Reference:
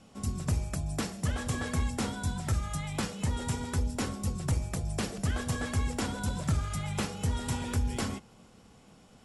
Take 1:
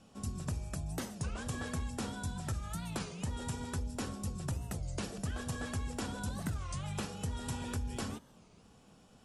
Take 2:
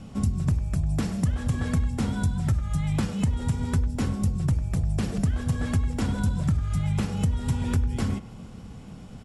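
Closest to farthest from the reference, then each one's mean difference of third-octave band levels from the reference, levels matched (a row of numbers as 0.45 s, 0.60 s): 1, 2; 2.0 dB, 6.5 dB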